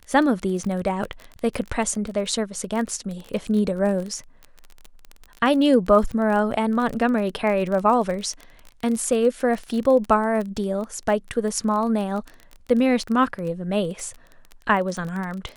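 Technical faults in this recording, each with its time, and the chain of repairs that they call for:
surface crackle 25 per second −27 dBFS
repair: click removal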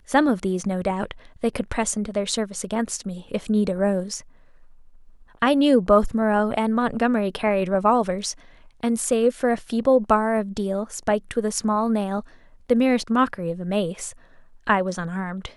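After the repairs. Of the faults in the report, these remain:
none of them is left

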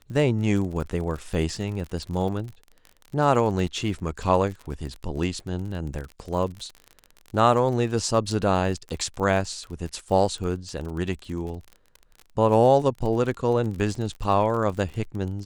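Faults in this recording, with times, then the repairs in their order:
surface crackle 42 per second −32 dBFS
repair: click removal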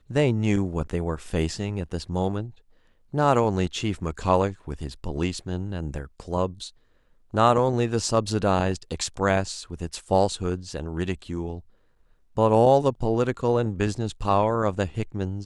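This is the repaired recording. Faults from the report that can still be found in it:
none of them is left

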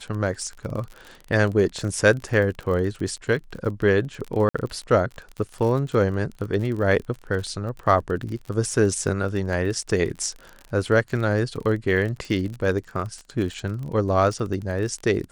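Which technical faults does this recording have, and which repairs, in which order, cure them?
surface crackle 37 per second −30 dBFS
0:04.49–0:04.54: drop-out 55 ms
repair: click removal
repair the gap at 0:04.49, 55 ms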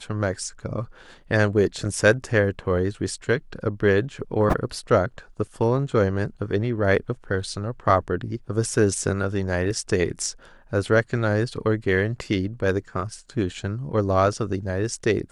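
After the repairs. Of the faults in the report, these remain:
none of them is left

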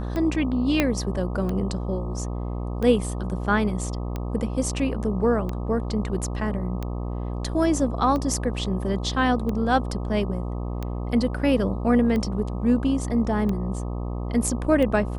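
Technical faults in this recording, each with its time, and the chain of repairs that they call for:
mains buzz 60 Hz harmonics 21 −29 dBFS
scratch tick 45 rpm −17 dBFS
0:00.80: click −6 dBFS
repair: click removal
hum removal 60 Hz, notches 21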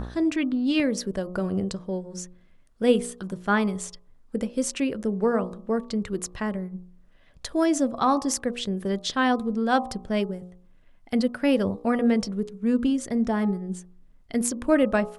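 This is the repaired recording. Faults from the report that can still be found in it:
0:00.80: click

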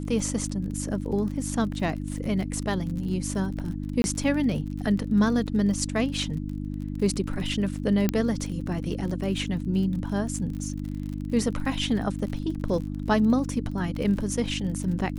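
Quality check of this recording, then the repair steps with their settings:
surface crackle 45 per second −34 dBFS
mains hum 50 Hz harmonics 6 −32 dBFS
0:04.02–0:04.04: drop-out 21 ms
0:08.09: click −9 dBFS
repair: click removal
hum removal 50 Hz, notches 6
repair the gap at 0:04.02, 21 ms

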